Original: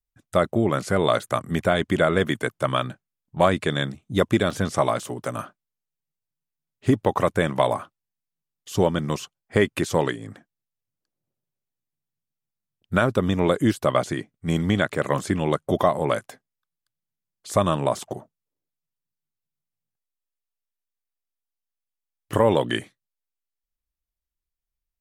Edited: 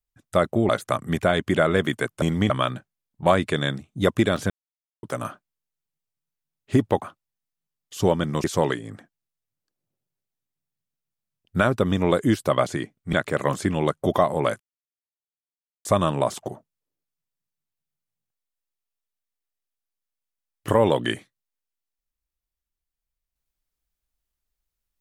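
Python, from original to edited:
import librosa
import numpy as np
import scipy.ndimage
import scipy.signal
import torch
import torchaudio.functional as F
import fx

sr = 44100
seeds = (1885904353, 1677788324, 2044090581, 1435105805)

y = fx.edit(x, sr, fx.cut(start_s=0.69, length_s=0.42),
    fx.silence(start_s=4.64, length_s=0.53),
    fx.cut(start_s=7.16, length_s=0.61),
    fx.cut(start_s=9.19, length_s=0.62),
    fx.move(start_s=14.5, length_s=0.28, to_s=2.64),
    fx.silence(start_s=16.25, length_s=1.25), tone=tone)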